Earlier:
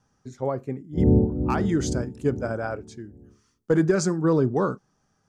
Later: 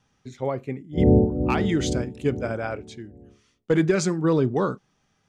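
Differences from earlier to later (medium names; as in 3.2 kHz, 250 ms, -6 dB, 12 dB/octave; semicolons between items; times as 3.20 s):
background: add resonant low-pass 670 Hz, resonance Q 4.2; master: add high-order bell 2.8 kHz +10 dB 1.2 oct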